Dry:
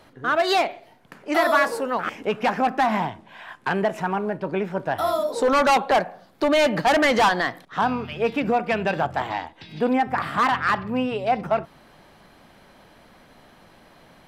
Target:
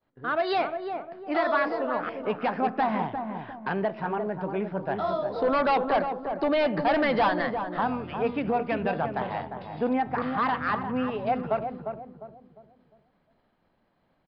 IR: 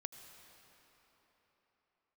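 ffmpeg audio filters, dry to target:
-filter_complex "[0:a]agate=range=0.0224:threshold=0.00891:ratio=3:detection=peak,highshelf=f=2400:g=-8,asplit=2[s0][s1];[s1]adelay=352,lowpass=f=890:p=1,volume=0.562,asplit=2[s2][s3];[s3]adelay=352,lowpass=f=890:p=1,volume=0.42,asplit=2[s4][s5];[s5]adelay=352,lowpass=f=890:p=1,volume=0.42,asplit=2[s6][s7];[s7]adelay=352,lowpass=f=890:p=1,volume=0.42,asplit=2[s8][s9];[s9]adelay=352,lowpass=f=890:p=1,volume=0.42[s10];[s2][s4][s6][s8][s10]amix=inputs=5:normalize=0[s11];[s0][s11]amix=inputs=2:normalize=0,aresample=11025,aresample=44100,volume=0.596"

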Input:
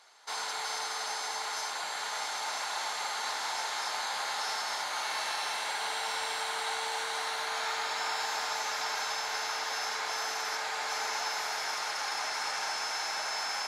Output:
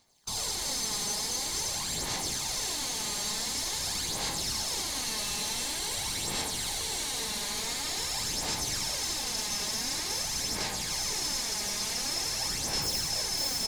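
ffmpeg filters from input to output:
-filter_complex "[0:a]equalizer=f=1400:t=o:w=0.27:g=-13.5,acrossover=split=1400[s0][s1];[s0]alimiter=level_in=4.73:limit=0.0631:level=0:latency=1,volume=0.211[s2];[s1]acrusher=bits=2:mode=log:mix=0:aa=0.000001[s3];[s2][s3]amix=inputs=2:normalize=0,asoftclip=type=hard:threshold=0.0106,bass=f=250:g=13,treble=f=4000:g=12,afwtdn=0.00501,aecho=1:1:82:0.531,asplit=2[s4][s5];[s5]acrusher=samples=40:mix=1:aa=0.000001:lfo=1:lforange=24:lforate=4,volume=0.266[s6];[s4][s6]amix=inputs=2:normalize=0,aphaser=in_gain=1:out_gain=1:delay=4.9:decay=0.46:speed=0.47:type=sinusoidal"

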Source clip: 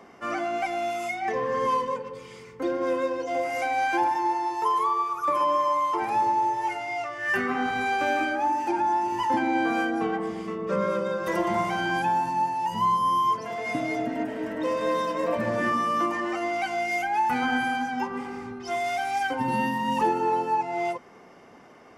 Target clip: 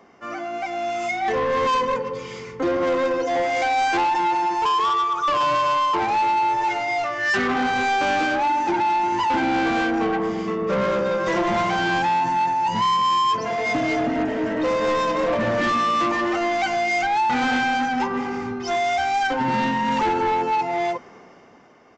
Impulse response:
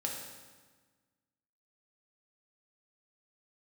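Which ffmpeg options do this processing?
-af "dynaudnorm=f=120:g=17:m=4.22,aresample=16000,asoftclip=type=tanh:threshold=0.168,aresample=44100,volume=0.794"

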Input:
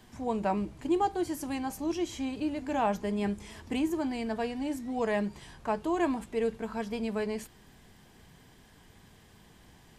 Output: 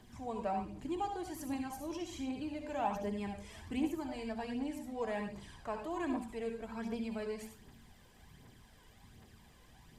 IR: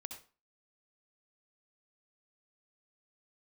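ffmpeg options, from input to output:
-filter_complex "[1:a]atrim=start_sample=2205[s0];[0:a][s0]afir=irnorm=-1:irlink=0,aphaser=in_gain=1:out_gain=1:delay=2.1:decay=0.45:speed=1.3:type=triangular,asplit=2[s1][s2];[s2]acompressor=threshold=0.00631:ratio=6,volume=0.708[s3];[s1][s3]amix=inputs=2:normalize=0,volume=0.501"

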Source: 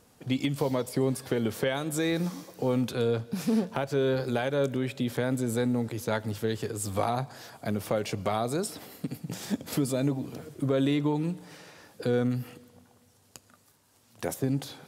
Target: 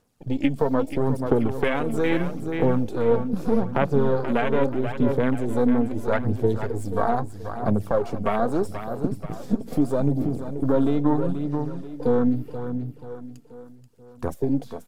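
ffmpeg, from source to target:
-filter_complex "[0:a]aeval=exprs='if(lt(val(0),0),0.447*val(0),val(0))':c=same,afwtdn=0.0126,asplit=2[s0][s1];[s1]aecho=0:1:483|966|1449|1932|2415:0.355|0.156|0.0687|0.0302|0.0133[s2];[s0][s2]amix=inputs=2:normalize=0,aphaser=in_gain=1:out_gain=1:delay=4.5:decay=0.42:speed=0.78:type=sinusoidal,volume=2.24"

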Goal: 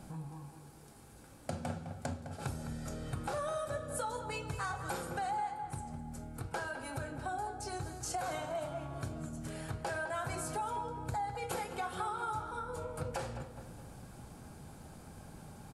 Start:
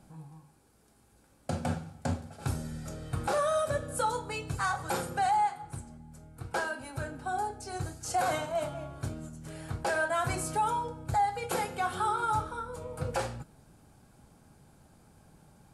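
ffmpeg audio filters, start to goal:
-filter_complex "[0:a]acompressor=threshold=0.00398:ratio=3,asplit=2[s0][s1];[s1]adelay=208,lowpass=f=2400:p=1,volume=0.355,asplit=2[s2][s3];[s3]adelay=208,lowpass=f=2400:p=1,volume=0.52,asplit=2[s4][s5];[s5]adelay=208,lowpass=f=2400:p=1,volume=0.52,asplit=2[s6][s7];[s7]adelay=208,lowpass=f=2400:p=1,volume=0.52,asplit=2[s8][s9];[s9]adelay=208,lowpass=f=2400:p=1,volume=0.52,asplit=2[s10][s11];[s11]adelay=208,lowpass=f=2400:p=1,volume=0.52[s12];[s2][s4][s6][s8][s10][s12]amix=inputs=6:normalize=0[s13];[s0][s13]amix=inputs=2:normalize=0,volume=2.24"

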